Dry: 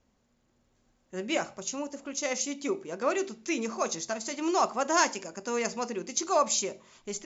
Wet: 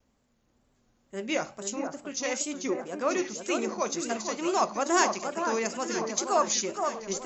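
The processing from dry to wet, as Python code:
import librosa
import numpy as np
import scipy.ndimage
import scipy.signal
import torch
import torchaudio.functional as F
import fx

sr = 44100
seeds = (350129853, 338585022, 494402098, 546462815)

y = fx.echo_alternate(x, sr, ms=470, hz=1600.0, feedback_pct=68, wet_db=-5.0)
y = fx.wow_flutter(y, sr, seeds[0], rate_hz=2.1, depth_cents=100.0)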